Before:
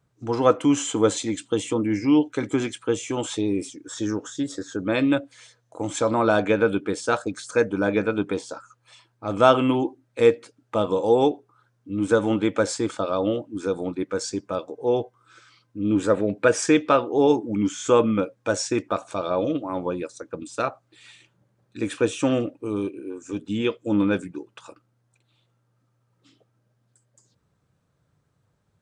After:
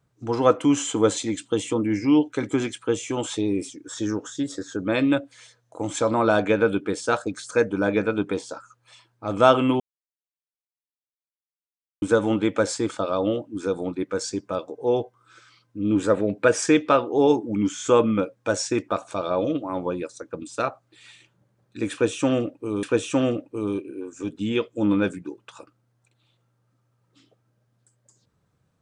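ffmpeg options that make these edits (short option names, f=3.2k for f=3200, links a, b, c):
-filter_complex "[0:a]asplit=4[a][b][c][d];[a]atrim=end=9.8,asetpts=PTS-STARTPTS,afade=t=out:st=9.796:d=0.004:c=hsin[e];[b]atrim=start=9.8:end=12.02,asetpts=PTS-STARTPTS,volume=0[f];[c]atrim=start=12.02:end=22.832,asetpts=PTS-STARTPTS,afade=t=in:d=0.004:c=hsin[g];[d]atrim=start=21.918[h];[e][f][g]concat=n=3:v=0:a=1[i];[i][h]acrossfade=d=0.004:c1=hsin:c2=hsin"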